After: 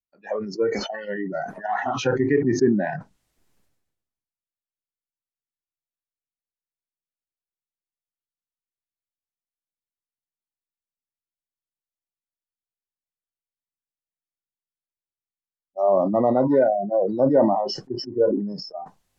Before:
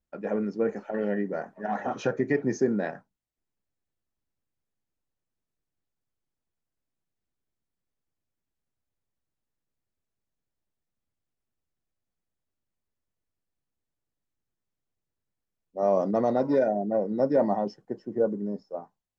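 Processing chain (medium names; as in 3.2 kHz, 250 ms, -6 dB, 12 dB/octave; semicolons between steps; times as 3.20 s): spectral noise reduction 25 dB; low-pass that closes with the level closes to 1.9 kHz, closed at -24.5 dBFS; decay stretcher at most 51 dB/s; trim +5 dB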